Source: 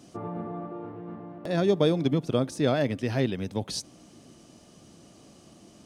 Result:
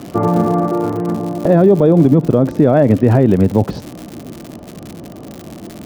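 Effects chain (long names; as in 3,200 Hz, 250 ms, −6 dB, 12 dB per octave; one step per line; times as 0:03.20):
low-pass filter 1,800 Hz 12 dB per octave, from 0:01.12 1,000 Hz
surface crackle 130 per second −43 dBFS
boost into a limiter +22 dB
level −1 dB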